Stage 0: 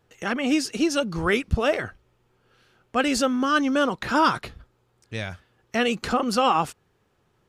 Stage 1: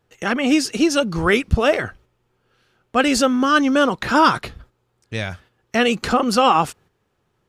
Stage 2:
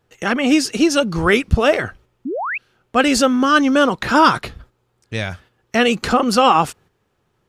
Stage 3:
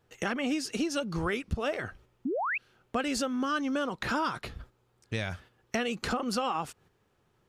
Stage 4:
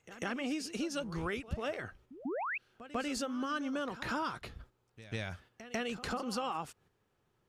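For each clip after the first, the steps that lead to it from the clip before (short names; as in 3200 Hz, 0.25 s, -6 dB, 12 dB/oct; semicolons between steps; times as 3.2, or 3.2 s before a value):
gate -52 dBFS, range -7 dB; gain +5.5 dB
painted sound rise, 2.25–2.58, 230–2800 Hz -25 dBFS; gain +2 dB
compressor 5:1, threshold -25 dBFS, peak gain reduction 15.5 dB; gain -4 dB
reverse echo 0.145 s -14.5 dB; gain -6 dB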